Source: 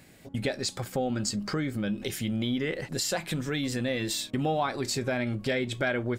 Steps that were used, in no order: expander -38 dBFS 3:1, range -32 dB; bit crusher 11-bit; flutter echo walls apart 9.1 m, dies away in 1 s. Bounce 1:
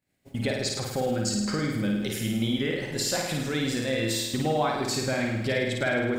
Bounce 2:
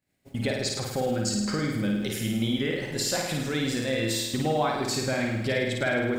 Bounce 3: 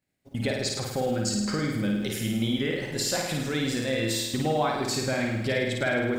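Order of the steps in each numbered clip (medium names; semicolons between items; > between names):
flutter echo > bit crusher > expander; bit crusher > flutter echo > expander; bit crusher > expander > flutter echo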